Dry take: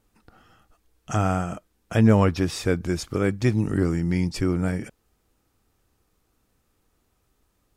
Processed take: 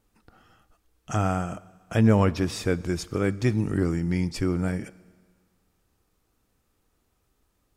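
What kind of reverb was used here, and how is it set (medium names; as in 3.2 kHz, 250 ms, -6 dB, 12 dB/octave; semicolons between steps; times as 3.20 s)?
Schroeder reverb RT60 1.7 s, combs from 27 ms, DRR 19.5 dB; trim -2 dB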